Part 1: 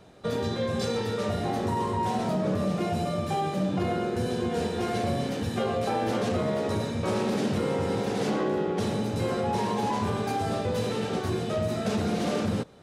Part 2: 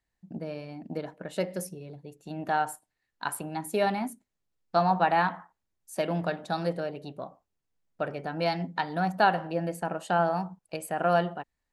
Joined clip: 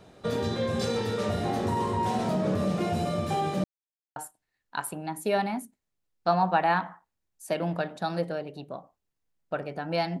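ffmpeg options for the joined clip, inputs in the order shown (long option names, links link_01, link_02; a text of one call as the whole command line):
ffmpeg -i cue0.wav -i cue1.wav -filter_complex "[0:a]apad=whole_dur=10.2,atrim=end=10.2,asplit=2[link_01][link_02];[link_01]atrim=end=3.64,asetpts=PTS-STARTPTS,afade=type=out:start_time=3.636:duration=0.004:curve=hsin[link_03];[link_02]atrim=start=3.64:end=4.16,asetpts=PTS-STARTPTS,volume=0[link_04];[1:a]atrim=start=2.64:end=8.68,asetpts=PTS-STARTPTS,afade=type=in:duration=0.004:curve=hsin[link_05];[link_03][link_04][link_05]concat=n=3:v=0:a=1" out.wav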